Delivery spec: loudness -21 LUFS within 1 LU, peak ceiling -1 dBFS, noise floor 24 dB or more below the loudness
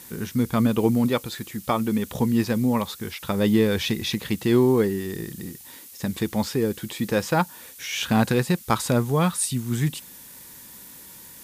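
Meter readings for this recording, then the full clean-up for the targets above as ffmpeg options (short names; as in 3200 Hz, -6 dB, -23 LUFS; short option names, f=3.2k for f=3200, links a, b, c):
noise floor -45 dBFS; noise floor target -48 dBFS; loudness -24.0 LUFS; peak -6.0 dBFS; loudness target -21.0 LUFS
-> -af "afftdn=nr=6:nf=-45"
-af "volume=3dB"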